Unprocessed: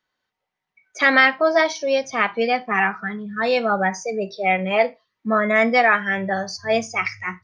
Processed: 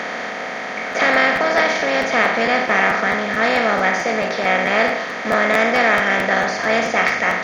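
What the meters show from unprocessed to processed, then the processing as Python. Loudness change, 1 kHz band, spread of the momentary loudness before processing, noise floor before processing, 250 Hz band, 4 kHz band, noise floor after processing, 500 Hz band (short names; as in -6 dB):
+3.0 dB, +3.5 dB, 10 LU, -82 dBFS, +1.5 dB, +4.5 dB, -27 dBFS, +2.0 dB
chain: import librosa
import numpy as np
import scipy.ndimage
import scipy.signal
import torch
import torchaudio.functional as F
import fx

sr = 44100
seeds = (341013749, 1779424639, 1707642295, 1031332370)

y = fx.bin_compress(x, sr, power=0.2)
y = fx.buffer_crackle(y, sr, first_s=0.91, period_s=0.22, block=512, kind='repeat')
y = y * librosa.db_to_amplitude(-6.5)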